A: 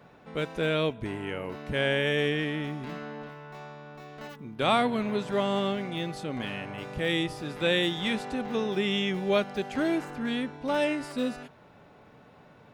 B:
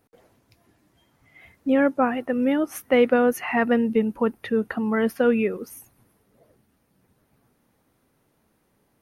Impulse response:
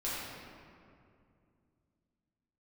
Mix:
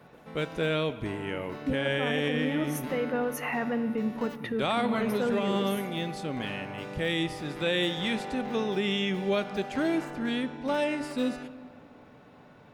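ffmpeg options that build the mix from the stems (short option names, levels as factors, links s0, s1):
-filter_complex "[0:a]volume=0.944,asplit=2[s0][s1];[s1]volume=0.119[s2];[1:a]alimiter=limit=0.106:level=0:latency=1,volume=0.631,asplit=2[s3][s4];[s4]volume=0.168[s5];[2:a]atrim=start_sample=2205[s6];[s2][s5]amix=inputs=2:normalize=0[s7];[s7][s6]afir=irnorm=-1:irlink=0[s8];[s0][s3][s8]amix=inputs=3:normalize=0,alimiter=limit=0.119:level=0:latency=1:release=71"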